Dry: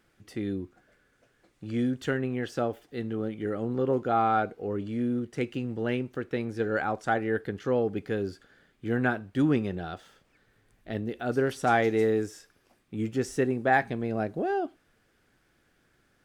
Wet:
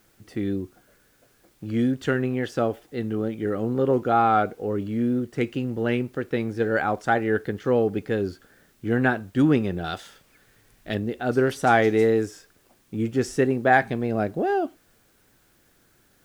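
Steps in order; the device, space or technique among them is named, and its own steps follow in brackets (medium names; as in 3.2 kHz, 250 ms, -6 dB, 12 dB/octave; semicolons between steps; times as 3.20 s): 9.84–10.95 s: treble shelf 2 kHz +11.5 dB; plain cassette with noise reduction switched in (tape noise reduction on one side only decoder only; wow and flutter; white noise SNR 40 dB); trim +5 dB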